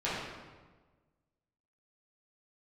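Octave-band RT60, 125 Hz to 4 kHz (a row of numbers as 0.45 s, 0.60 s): 1.7 s, 1.5 s, 1.4 s, 1.3 s, 1.1 s, 0.95 s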